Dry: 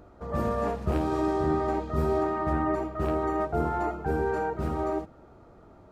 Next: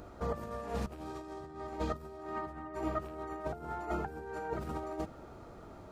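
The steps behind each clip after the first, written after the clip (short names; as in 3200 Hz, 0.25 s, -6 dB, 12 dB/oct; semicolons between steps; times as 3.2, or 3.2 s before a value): negative-ratio compressor -33 dBFS, ratio -0.5; high shelf 2300 Hz +8 dB; gain -5 dB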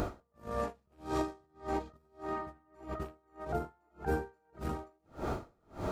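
negative-ratio compressor -45 dBFS, ratio -1; dB-linear tremolo 1.7 Hz, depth 40 dB; gain +12.5 dB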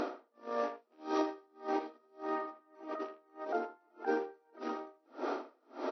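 speakerphone echo 80 ms, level -11 dB; FFT band-pass 230–6000 Hz; gain +1 dB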